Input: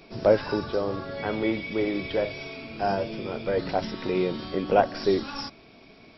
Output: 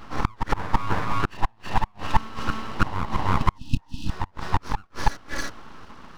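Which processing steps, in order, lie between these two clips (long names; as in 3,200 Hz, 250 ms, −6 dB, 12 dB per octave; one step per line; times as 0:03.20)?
gate with flip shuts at −17 dBFS, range −41 dB
flat-topped bell 630 Hz +15.5 dB
full-wave rectification
healed spectral selection 0:03.65–0:04.22, 330–2,500 Hz
backwards echo 327 ms −6 dB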